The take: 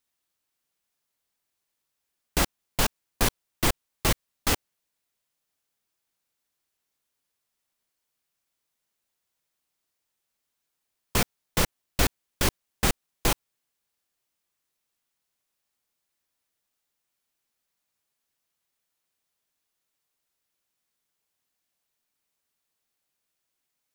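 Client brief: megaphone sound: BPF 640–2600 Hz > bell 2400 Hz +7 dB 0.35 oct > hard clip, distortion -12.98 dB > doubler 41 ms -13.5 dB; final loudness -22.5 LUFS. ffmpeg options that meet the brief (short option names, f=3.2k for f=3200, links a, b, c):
-filter_complex "[0:a]highpass=640,lowpass=2.6k,equalizer=f=2.4k:t=o:w=0.35:g=7,asoftclip=type=hard:threshold=-24.5dB,asplit=2[a][b];[b]adelay=41,volume=-13.5dB[c];[a][c]amix=inputs=2:normalize=0,volume=11.5dB"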